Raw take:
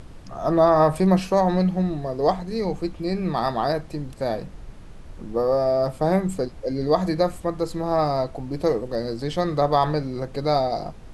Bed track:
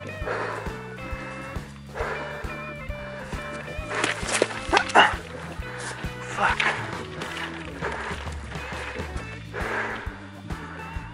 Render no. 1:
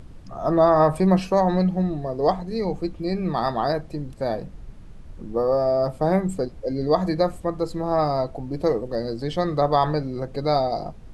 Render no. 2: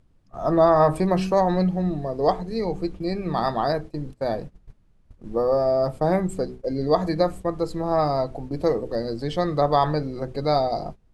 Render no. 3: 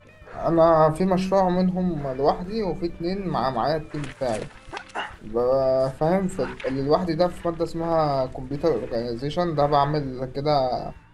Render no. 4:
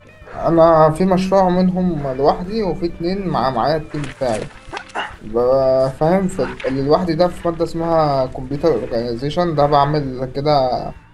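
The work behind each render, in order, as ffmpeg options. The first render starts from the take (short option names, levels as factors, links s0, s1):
-af "afftdn=nr=6:nf=-41"
-af "bandreject=f=63.02:t=h:w=4,bandreject=f=126.04:t=h:w=4,bandreject=f=189.06:t=h:w=4,bandreject=f=252.08:t=h:w=4,bandreject=f=315.1:t=h:w=4,bandreject=f=378.12:t=h:w=4,bandreject=f=441.14:t=h:w=4,agate=range=0.126:threshold=0.02:ratio=16:detection=peak"
-filter_complex "[1:a]volume=0.178[s0];[0:a][s0]amix=inputs=2:normalize=0"
-af "volume=2.11,alimiter=limit=0.891:level=0:latency=1"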